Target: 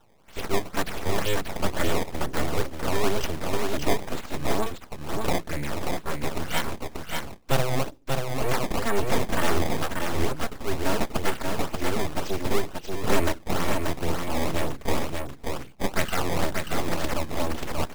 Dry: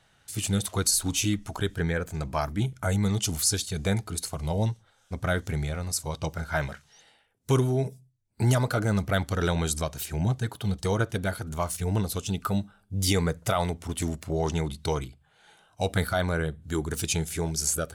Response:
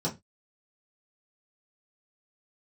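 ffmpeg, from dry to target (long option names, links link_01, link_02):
-filter_complex "[0:a]lowpass=frequency=3100:width=0.5412,lowpass=frequency=3100:width=1.3066,aemphasis=mode=production:type=75fm,bandreject=frequency=50:width_type=h:width=6,bandreject=frequency=100:width_type=h:width=6,bandreject=frequency=150:width_type=h:width=6,aecho=1:1:4.4:0.92,acrossover=split=430|1400[link_01][link_02][link_03];[link_02]alimiter=level_in=0.5dB:limit=-24dB:level=0:latency=1:release=38,volume=-0.5dB[link_04];[link_01][link_04][link_03]amix=inputs=3:normalize=0,acrusher=samples=18:mix=1:aa=0.000001:lfo=1:lforange=28.8:lforate=2.1,aeval=exprs='abs(val(0))':channel_layout=same,asplit=2[link_05][link_06];[link_06]aecho=0:1:585:0.631[link_07];[link_05][link_07]amix=inputs=2:normalize=0,volume=3.5dB"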